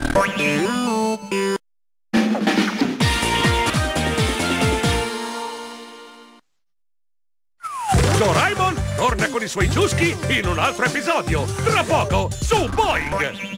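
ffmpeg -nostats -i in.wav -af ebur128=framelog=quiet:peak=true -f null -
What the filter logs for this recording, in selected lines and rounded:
Integrated loudness:
  I:         -19.7 LUFS
  Threshold: -30.1 LUFS
Loudness range:
  LRA:         5.5 LU
  Threshold: -40.5 LUFS
  LRA low:   -24.6 LUFS
  LRA high:  -19.1 LUFS
True peak:
  Peak:       -3.6 dBFS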